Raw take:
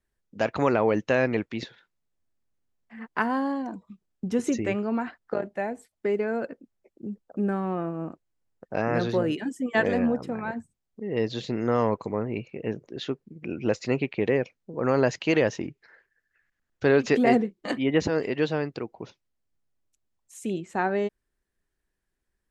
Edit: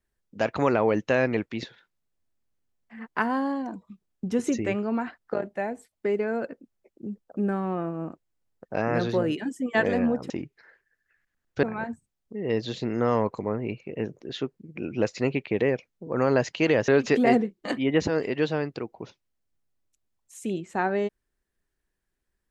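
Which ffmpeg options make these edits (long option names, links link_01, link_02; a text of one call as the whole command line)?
ffmpeg -i in.wav -filter_complex "[0:a]asplit=4[link_01][link_02][link_03][link_04];[link_01]atrim=end=10.302[link_05];[link_02]atrim=start=15.548:end=16.882[link_06];[link_03]atrim=start=10.298:end=15.552[link_07];[link_04]atrim=start=16.878[link_08];[link_05][link_06]acrossfade=duration=0.004:curve1=hsin:curve2=hsin[link_09];[link_09][link_07]acrossfade=duration=0.004:curve1=hsin:curve2=hsin[link_10];[link_10][link_08]acrossfade=duration=0.004:curve1=hsin:curve2=hsin" out.wav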